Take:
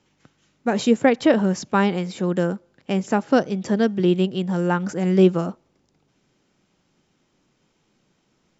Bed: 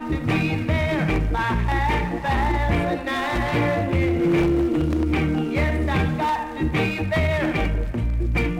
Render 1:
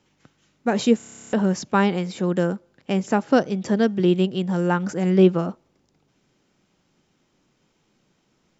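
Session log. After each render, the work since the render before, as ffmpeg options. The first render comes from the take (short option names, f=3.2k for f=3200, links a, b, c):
-filter_complex "[0:a]asettb=1/sr,asplit=3[a][b][c];[a]atrim=end=5.104[d];[b]atrim=start=5.1:end=5.5,asetpts=PTS-STARTPTS,afade=t=in:d=0.004:c=qsin,afade=t=out:st=0.396:d=0.004:c=qsin,lowpass=5k[e];[c]atrim=start=5.496[f];[d][e]acrossfade=d=0.004:c1=hsin:c2=qsin[g];[g][f]acrossfade=d=0.004:c1=qsin:c2=hsin,asplit=13[h][i][j][k][l][m][n][o][p][q][r][s][t];[h]atrim=end=1.002[u];[i]atrim=start=0.968:end=1.002[v];[j]atrim=start=0.968:end=1.002[w];[k]atrim=start=0.968:end=1.002[x];[l]atrim=start=0.968:end=1.002[y];[m]atrim=start=0.968:end=1.002[z];[n]atrim=start=0.968:end=1.002[aa];[o]atrim=start=0.968:end=1.002[ab];[p]atrim=start=0.968:end=1.002[ac];[q]atrim=start=0.968:end=1.002[ad];[r]atrim=start=0.968:end=1.002[ae];[s]atrim=start=0.968:end=1.002[af];[t]atrim=start=1.328[ag];[u][v]acrossfade=d=0.004:c1=hsin:c2=hsin[ah];[ah][w]acrossfade=d=0.004:c1=hsin:c2=hsin[ai];[ai][x]acrossfade=d=0.004:c1=hsin:c2=hsin[aj];[aj][y]acrossfade=d=0.004:c1=hsin:c2=hsin[ak];[ak][z]acrossfade=d=0.004:c1=hsin:c2=hsin[al];[al][aa]acrossfade=d=0.004:c1=hsin:c2=hsin[am];[am][ab]acrossfade=d=0.004:c1=hsin:c2=hsin[an];[an][ac]acrossfade=d=0.004:c1=hsin:c2=hsin[ao];[ao][ad]acrossfade=d=0.004:c1=hsin:c2=hsin[ap];[ap][ae]acrossfade=d=0.004:c1=hsin:c2=hsin[aq];[aq][af]acrossfade=d=0.004:c1=hsin:c2=hsin[ar];[ar][ag]acrossfade=d=0.004:c1=hsin:c2=hsin"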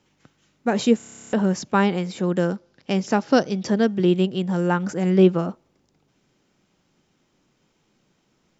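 -filter_complex "[0:a]asettb=1/sr,asplit=3[a][b][c];[a]atrim=end=2.434[d];[b]atrim=start=2.43:end=3.7,asetpts=PTS-STARTPTS,afade=t=in:d=0.004:c=qsin,afade=t=out:st=1.266:d=0.004:c=qsin,lowpass=f=5.4k:t=q:w=2.4[e];[c]atrim=start=3.696[f];[d][e]acrossfade=d=0.004:c1=hsin:c2=qsin[g];[g][f]acrossfade=d=0.004:c1=qsin:c2=hsin"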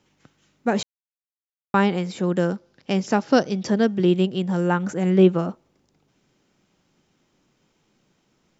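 -filter_complex "[0:a]asettb=1/sr,asplit=3[a][b][c];[a]atrim=end=4.644[d];[b]atrim=start=4.64:end=5.35,asetpts=PTS-STARTPTS,afade=t=in:d=0.004:c=qsin,afade=t=out:st=0.706:d=0.004:c=qsin,equalizer=f=5k:w=6:g=-9[e];[c]atrim=start=5.346[f];[d][e]acrossfade=d=0.004:c1=hsin:c2=qsin[g];[g][f]acrossfade=d=0.004:c1=qsin:c2=hsin,asplit=3[h][i][j];[h]atrim=end=0.83,asetpts=PTS-STARTPTS,afade=t=out:st=0.826:d=0.004:c=hsin[k];[i]atrim=start=0.83:end=1.74,asetpts=PTS-STARTPTS,volume=0[l];[j]atrim=start=1.74,asetpts=PTS-STARTPTS,afade=t=in:d=0.004:c=hsin[m];[k][l][m]concat=n=3:v=0:a=1"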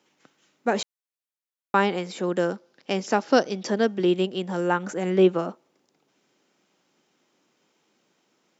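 -af "highpass=290"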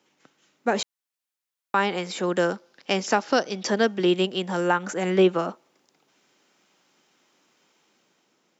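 -filter_complex "[0:a]acrossover=split=740[a][b];[b]dynaudnorm=f=360:g=5:m=5.5dB[c];[a][c]amix=inputs=2:normalize=0,alimiter=limit=-9dB:level=0:latency=1:release=302"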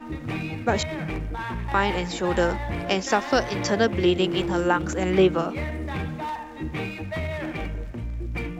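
-filter_complex "[1:a]volume=-8.5dB[a];[0:a][a]amix=inputs=2:normalize=0"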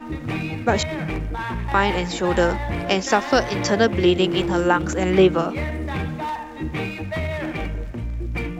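-af "volume=3.5dB"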